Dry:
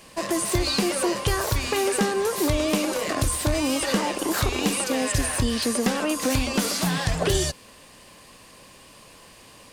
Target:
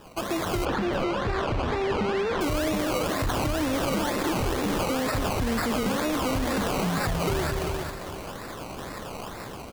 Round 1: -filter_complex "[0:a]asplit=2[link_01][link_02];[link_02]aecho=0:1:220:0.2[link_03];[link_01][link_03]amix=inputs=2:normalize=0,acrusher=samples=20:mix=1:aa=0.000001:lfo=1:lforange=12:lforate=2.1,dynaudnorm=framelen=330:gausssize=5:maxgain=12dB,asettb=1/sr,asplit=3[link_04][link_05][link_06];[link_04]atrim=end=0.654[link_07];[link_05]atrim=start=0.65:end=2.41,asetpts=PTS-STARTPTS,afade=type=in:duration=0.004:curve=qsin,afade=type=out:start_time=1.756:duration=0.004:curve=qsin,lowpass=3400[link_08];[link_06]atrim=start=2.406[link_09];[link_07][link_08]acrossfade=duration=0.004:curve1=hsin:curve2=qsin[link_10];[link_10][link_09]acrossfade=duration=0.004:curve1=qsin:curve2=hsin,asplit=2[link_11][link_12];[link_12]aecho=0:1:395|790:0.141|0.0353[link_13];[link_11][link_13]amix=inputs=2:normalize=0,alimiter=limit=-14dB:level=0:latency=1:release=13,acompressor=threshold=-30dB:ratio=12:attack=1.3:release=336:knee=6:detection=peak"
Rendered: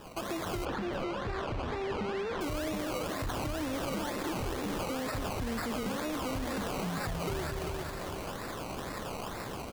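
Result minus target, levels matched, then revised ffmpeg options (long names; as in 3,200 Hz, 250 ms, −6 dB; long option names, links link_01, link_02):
downward compressor: peak gain reduction +8 dB
-filter_complex "[0:a]asplit=2[link_01][link_02];[link_02]aecho=0:1:220:0.2[link_03];[link_01][link_03]amix=inputs=2:normalize=0,acrusher=samples=20:mix=1:aa=0.000001:lfo=1:lforange=12:lforate=2.1,dynaudnorm=framelen=330:gausssize=5:maxgain=12dB,asettb=1/sr,asplit=3[link_04][link_05][link_06];[link_04]atrim=end=0.654[link_07];[link_05]atrim=start=0.65:end=2.41,asetpts=PTS-STARTPTS,afade=type=in:duration=0.004:curve=qsin,afade=type=out:start_time=1.756:duration=0.004:curve=qsin,lowpass=3400[link_08];[link_06]atrim=start=2.406[link_09];[link_07][link_08]acrossfade=duration=0.004:curve1=hsin:curve2=qsin[link_10];[link_10][link_09]acrossfade=duration=0.004:curve1=qsin:curve2=hsin,asplit=2[link_11][link_12];[link_12]aecho=0:1:395|790:0.141|0.0353[link_13];[link_11][link_13]amix=inputs=2:normalize=0,alimiter=limit=-14dB:level=0:latency=1:release=13,acompressor=threshold=-21dB:ratio=12:attack=1.3:release=336:knee=6:detection=peak"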